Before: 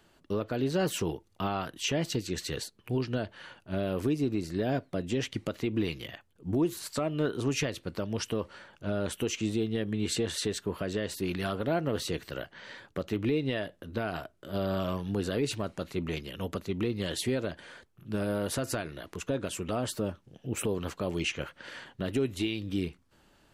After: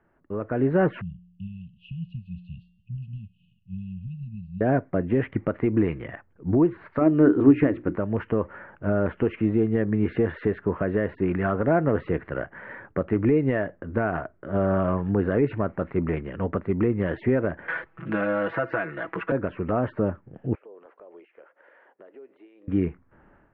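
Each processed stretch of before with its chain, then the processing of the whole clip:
1.01–4.61 brick-wall FIR band-stop 220–2500 Hz + resonator 59 Hz, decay 0.93 s, harmonics odd
7.01–7.96 bell 300 Hz +13 dB 0.62 oct + notches 60/120/180/240/300/360 Hz + mismatched tape noise reduction encoder only
17.68–19.32 tilt +3.5 dB/oct + comb 6.1 ms, depth 100% + three-band squash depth 70%
20.55–22.68 HPF 470 Hz 24 dB/oct + compressor 5:1, threshold -46 dBFS + bell 1600 Hz -14 dB 2.8 oct
whole clip: AGC gain up to 11 dB; steep low-pass 2000 Hz 36 dB/oct; de-esser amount 80%; gain -3 dB

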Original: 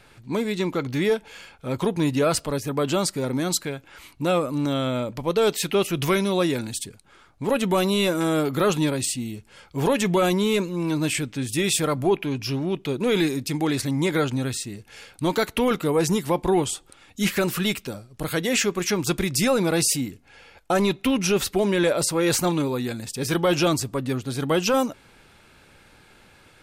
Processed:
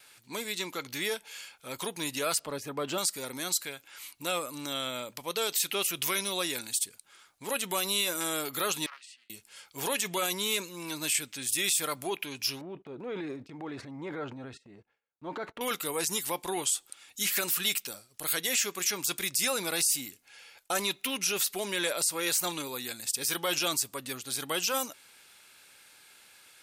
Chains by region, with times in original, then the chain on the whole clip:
2.39–2.98 overdrive pedal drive 7 dB, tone 1200 Hz, clips at -12.5 dBFS + low shelf 420 Hz +10.5 dB
8.86–9.3 ladder band-pass 1400 Hz, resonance 70% + Doppler distortion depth 0.3 ms
12.61–15.61 LPF 1000 Hz + gate -43 dBFS, range -18 dB + transient shaper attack -5 dB, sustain +8 dB
whole clip: gate with hold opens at -49 dBFS; tilt +4.5 dB/oct; limiter -9 dBFS; gain -8 dB

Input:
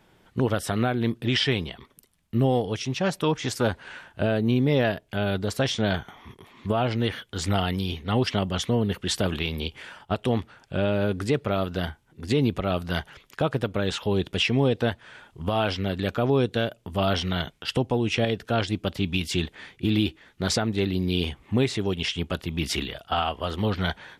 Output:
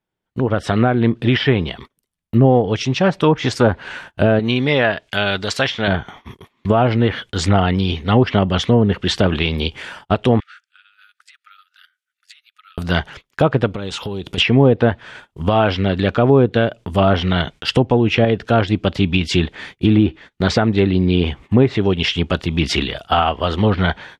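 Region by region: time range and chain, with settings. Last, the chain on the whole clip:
4.39–5.88 median filter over 3 samples + tilt shelf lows -8 dB, about 840 Hz
10.4–12.78 brick-wall FIR high-pass 1200 Hz + compressor 16:1, threshold -44 dBFS
13.71–14.38 bell 1700 Hz -7 dB 0.29 oct + compressor 10:1, threshold -31 dBFS + notch 620 Hz
whole clip: treble ducked by the level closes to 1400 Hz, closed at -18 dBFS; gate -46 dBFS, range -24 dB; AGC gain up to 11.5 dB

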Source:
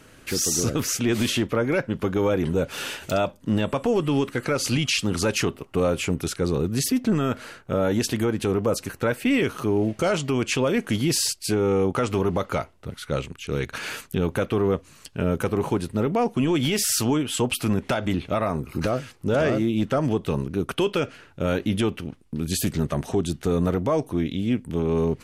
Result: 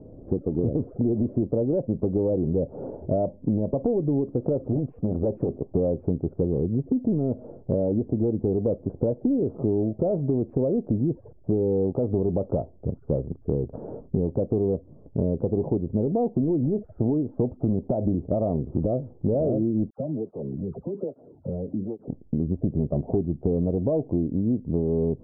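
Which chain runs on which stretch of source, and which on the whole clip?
4.59–5.59 tone controls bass -1 dB, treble +7 dB + core saturation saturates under 640 Hz
19.9–22.09 compressor 5:1, threshold -32 dBFS + dispersion lows, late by 82 ms, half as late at 1200 Hz + tape flanging out of phase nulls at 1.2 Hz, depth 3.7 ms
whole clip: Wiener smoothing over 15 samples; steep low-pass 680 Hz 36 dB/oct; compressor 6:1, threshold -29 dBFS; gain +8 dB

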